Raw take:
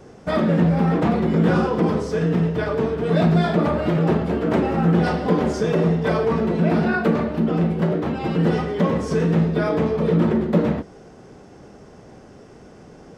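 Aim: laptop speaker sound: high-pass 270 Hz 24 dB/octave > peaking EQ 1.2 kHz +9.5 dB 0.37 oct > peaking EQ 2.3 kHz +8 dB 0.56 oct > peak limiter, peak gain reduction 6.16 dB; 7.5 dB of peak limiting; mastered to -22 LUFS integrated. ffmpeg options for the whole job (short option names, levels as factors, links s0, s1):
-af "alimiter=limit=0.2:level=0:latency=1,highpass=f=270:w=0.5412,highpass=f=270:w=1.3066,equalizer=f=1200:t=o:w=0.37:g=9.5,equalizer=f=2300:t=o:w=0.56:g=8,volume=1.58,alimiter=limit=0.237:level=0:latency=1"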